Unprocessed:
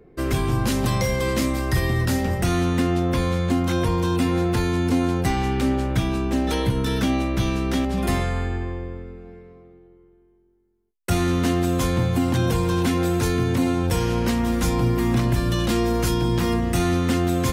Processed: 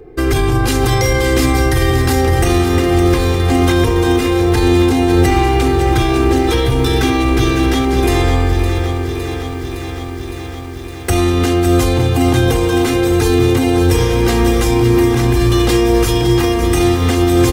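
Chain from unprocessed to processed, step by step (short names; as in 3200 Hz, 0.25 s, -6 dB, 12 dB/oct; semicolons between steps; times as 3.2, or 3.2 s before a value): comb 2.5 ms, depth 77%; maximiser +14.5 dB; lo-fi delay 0.561 s, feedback 80%, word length 6-bit, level -9.5 dB; gain -4.5 dB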